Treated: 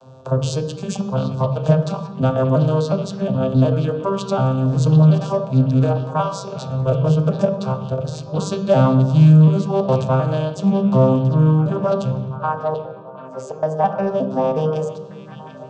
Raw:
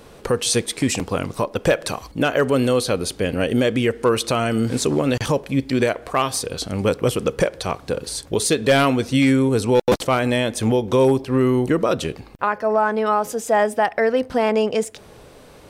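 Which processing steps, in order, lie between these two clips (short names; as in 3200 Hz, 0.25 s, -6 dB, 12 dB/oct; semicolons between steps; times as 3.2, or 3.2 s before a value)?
arpeggiated vocoder minor triad, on C3, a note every 0.364 s; fixed phaser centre 830 Hz, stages 4; in parallel at -9 dB: soft clip -18.5 dBFS, distortion -15 dB; 12.73–13.63 on the sum: flipped gate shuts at -20 dBFS, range -31 dB; delay with a stepping band-pass 0.74 s, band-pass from 3000 Hz, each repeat -0.7 oct, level -7.5 dB; on a send at -7 dB: reverb RT60 1.1 s, pre-delay 3 ms; on the sum: gain +4 dB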